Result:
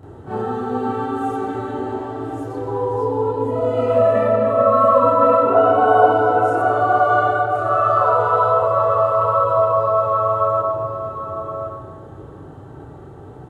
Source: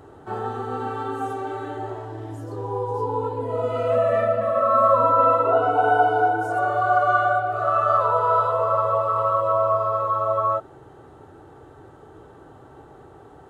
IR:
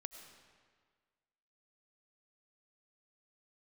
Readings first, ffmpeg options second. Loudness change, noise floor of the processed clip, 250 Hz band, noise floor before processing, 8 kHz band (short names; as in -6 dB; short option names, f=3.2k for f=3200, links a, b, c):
+3.5 dB, -38 dBFS, +9.0 dB, -47 dBFS, n/a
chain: -filter_complex "[0:a]equalizer=f=120:t=o:w=2.9:g=11.5,aecho=1:1:1072:0.355,asplit=2[a][b];[1:a]atrim=start_sample=2205,adelay=32[c];[b][c]afir=irnorm=-1:irlink=0,volume=10.5dB[d];[a][d]amix=inputs=2:normalize=0,volume=-5.5dB"